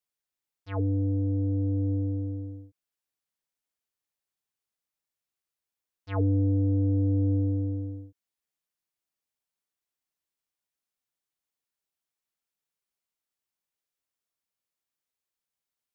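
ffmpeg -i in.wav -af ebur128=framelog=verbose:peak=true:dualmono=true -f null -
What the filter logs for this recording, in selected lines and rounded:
Integrated loudness:
  I:         -24.6 LUFS
  Threshold: -35.4 LUFS
Loudness range:
  LRA:        13.3 LU
  Threshold: -48.3 LUFS
  LRA low:   -38.5 LUFS
  LRA high:  -25.3 LUFS
True peak:
  Peak:      -16.8 dBFS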